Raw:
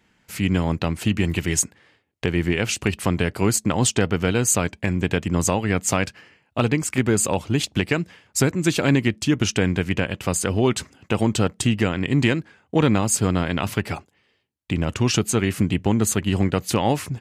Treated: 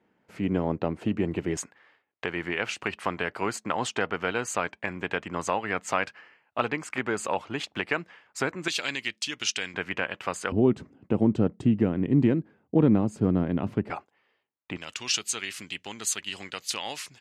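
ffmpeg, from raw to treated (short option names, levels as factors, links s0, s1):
-af "asetnsamples=n=441:p=0,asendcmd='1.57 bandpass f 1200;8.68 bandpass f 3900;9.74 bandpass f 1300;10.52 bandpass f 260;13.9 bandpass f 1000;14.77 bandpass f 4300',bandpass=f=470:t=q:w=0.89:csg=0"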